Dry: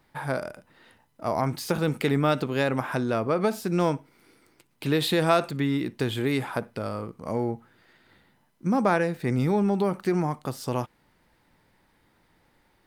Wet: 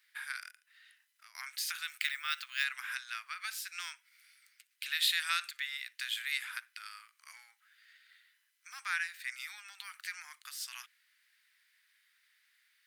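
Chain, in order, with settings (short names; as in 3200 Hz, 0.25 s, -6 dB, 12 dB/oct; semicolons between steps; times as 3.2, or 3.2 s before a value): steep high-pass 1600 Hz 36 dB/oct; 0.5–1.35 compressor 4:1, threshold -58 dBFS, peak gain reduction 13.5 dB; 1.89–2.64 careless resampling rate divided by 2×, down filtered, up hold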